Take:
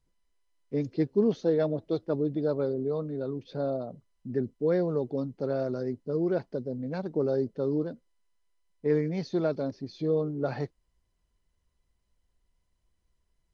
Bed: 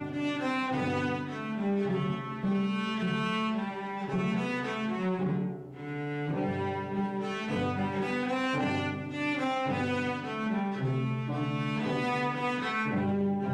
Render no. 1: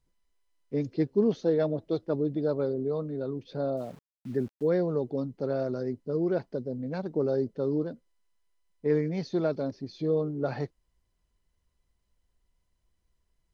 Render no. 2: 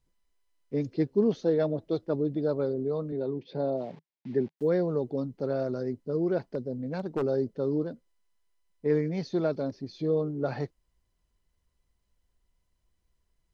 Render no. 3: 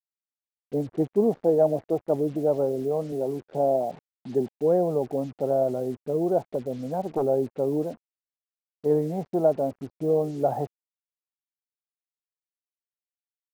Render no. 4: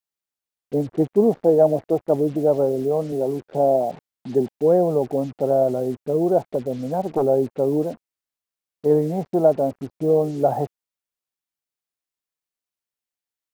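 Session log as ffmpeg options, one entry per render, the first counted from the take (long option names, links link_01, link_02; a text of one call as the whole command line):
ffmpeg -i in.wav -filter_complex "[0:a]asettb=1/sr,asplit=3[link_01][link_02][link_03];[link_01]atrim=end=3.774[link_04];[link_02]atrim=start=3.77:end=4.68,asetpts=PTS-STARTPTS,afade=type=in:duration=0.004:curve=qsin,afade=type=out:start_time=0.906:duration=0.004:curve=qsin,aeval=exprs='val(0)*gte(abs(val(0)),0.00335)':channel_layout=same[link_05];[link_03]atrim=start=4.676[link_06];[link_04][link_05]acrossfade=duration=0.004:curve1=hsin:curve2=qsin[link_07];[link_07][link_06]acrossfade=duration=0.004:curve1=qsin:curve2=hsin" out.wav
ffmpeg -i in.wav -filter_complex "[0:a]asettb=1/sr,asplit=3[link_01][link_02][link_03];[link_01]atrim=end=3.124[link_04];[link_02]atrim=start=3.12:end=4.57,asetpts=PTS-STARTPTS,afade=type=in:duration=0.004:curve=qsin,afade=type=out:start_time=1.446:duration=0.004:curve=qsin,highpass=140,equalizer=frequency=160:width_type=q:width=4:gain=5,equalizer=frequency=380:width_type=q:width=4:gain=4,equalizer=frequency=870:width_type=q:width=4:gain=5,equalizer=frequency=1300:width_type=q:width=4:gain=-8,equalizer=frequency=2100:width_type=q:width=4:gain=4,lowpass=frequency=5000:width=0.5412,lowpass=frequency=5000:width=1.3066[link_05];[link_03]atrim=start=4.566[link_06];[link_04][link_05]acrossfade=duration=0.004:curve1=hsin:curve2=qsin[link_07];[link_07][link_06]acrossfade=duration=0.004:curve1=qsin:curve2=hsin,asplit=3[link_08][link_09][link_10];[link_08]afade=type=out:start_time=6.5:duration=0.02[link_11];[link_09]aeval=exprs='0.0794*(abs(mod(val(0)/0.0794+3,4)-2)-1)':channel_layout=same,afade=type=in:start_time=6.5:duration=0.02,afade=type=out:start_time=7.21:duration=0.02[link_12];[link_10]afade=type=in:start_time=7.21:duration=0.02[link_13];[link_11][link_12][link_13]amix=inputs=3:normalize=0" out.wav
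ffmpeg -i in.wav -af "lowpass=frequency=750:width_type=q:width=4.9,acrusher=bits=7:mix=0:aa=0.5" out.wav
ffmpeg -i in.wav -af "volume=5dB" out.wav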